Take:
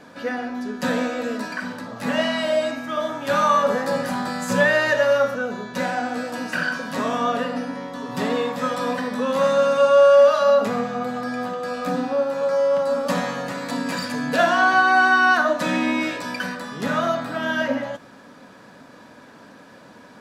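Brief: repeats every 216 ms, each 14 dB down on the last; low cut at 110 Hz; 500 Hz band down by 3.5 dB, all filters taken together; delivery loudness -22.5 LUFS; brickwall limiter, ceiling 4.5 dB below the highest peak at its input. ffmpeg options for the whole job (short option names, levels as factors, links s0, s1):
-af "highpass=110,equalizer=f=500:t=o:g=-4,alimiter=limit=0.266:level=0:latency=1,aecho=1:1:216|432:0.2|0.0399,volume=1.12"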